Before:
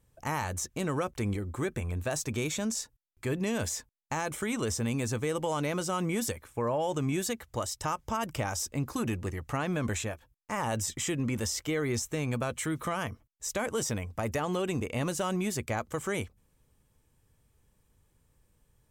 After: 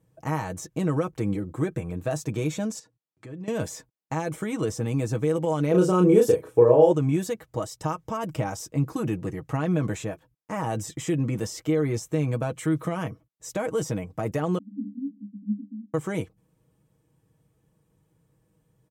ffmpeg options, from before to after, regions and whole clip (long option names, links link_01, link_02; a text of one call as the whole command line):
ffmpeg -i in.wav -filter_complex "[0:a]asettb=1/sr,asplit=3[link_01][link_02][link_03];[link_01]atrim=end=2.794[link_04];[link_02]atrim=start=2.79:end=3.48,asetpts=PTS-STARTPTS,afade=type=in:duration=0.004:curve=qsin,afade=type=out:start_time=0.686:duration=0.004:curve=qsin,acompressor=threshold=-45dB:ratio=3:attack=3.2:release=140:knee=1:detection=peak,highpass=110,lowpass=7600[link_05];[link_03]atrim=start=3.476[link_06];[link_04][link_05]acrossfade=duration=0.004:curve1=hsin:curve2=qsin[link_07];[link_07][link_06]acrossfade=duration=0.004:curve1=qsin:curve2=hsin,asettb=1/sr,asplit=3[link_08][link_09][link_10];[link_08]atrim=end=5.714[link_11];[link_09]atrim=start=5.71:end=6.92,asetpts=PTS-STARTPTS,afade=type=in:duration=0.004:curve=qsin,afade=type=out:start_time=1.206:duration=0.004:curve=qsin,equalizer=frequency=430:width_type=o:width=0.63:gain=14.5,bandreject=frequency=2100:width=10,asplit=2[link_12][link_13];[link_13]adelay=33,volume=-3dB[link_14];[link_12][link_14]amix=inputs=2:normalize=0,atrim=end_sample=53361[link_15];[link_10]atrim=start=6.916[link_16];[link_11][link_15]acrossfade=duration=0.004:curve1=hsin:curve2=qsin[link_17];[link_17][link_16]acrossfade=duration=0.004:curve1=qsin:curve2=hsin,asettb=1/sr,asplit=3[link_18][link_19][link_20];[link_18]atrim=end=14.584[link_21];[link_19]atrim=start=14.58:end=15.94,asetpts=PTS-STARTPTS,afade=type=in:duration=0.004:curve=qsin,afade=type=out:start_time=1.356:duration=0.004:curve=qsin,aeval=exprs='if(lt(val(0),0),0.447*val(0),val(0))':channel_layout=same,asuperpass=centerf=240:order=20:qfactor=2.8,acontrast=45[link_22];[link_20]atrim=start=15.936[link_23];[link_21][link_22]acrossfade=duration=0.004:curve1=hsin:curve2=qsin[link_24];[link_24][link_23]acrossfade=duration=0.004:curve1=qsin:curve2=hsin,highpass=100,tiltshelf=frequency=970:gain=6,aecho=1:1:6.3:0.59" out.wav